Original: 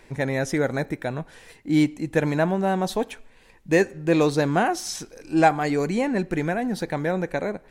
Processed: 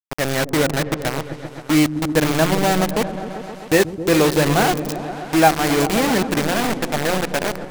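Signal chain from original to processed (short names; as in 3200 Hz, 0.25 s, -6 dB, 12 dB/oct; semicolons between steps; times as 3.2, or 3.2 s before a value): de-hum 174.7 Hz, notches 15; bit-crush 4-bit; on a send: repeats that get brighter 0.131 s, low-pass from 200 Hz, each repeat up 1 oct, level -6 dB; on the sum: gain +3.5 dB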